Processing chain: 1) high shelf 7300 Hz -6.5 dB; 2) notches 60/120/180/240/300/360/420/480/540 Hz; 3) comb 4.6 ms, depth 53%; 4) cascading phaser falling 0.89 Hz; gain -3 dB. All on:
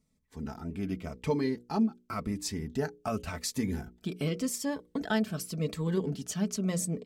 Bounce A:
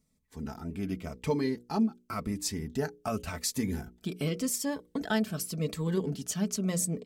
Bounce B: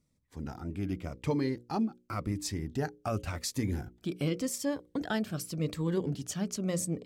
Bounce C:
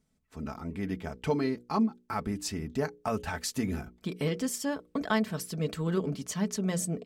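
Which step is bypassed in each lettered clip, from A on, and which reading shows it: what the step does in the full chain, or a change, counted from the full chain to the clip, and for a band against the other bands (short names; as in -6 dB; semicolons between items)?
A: 1, 8 kHz band +3.5 dB; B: 3, 125 Hz band +2.0 dB; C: 4, 1 kHz band +3.0 dB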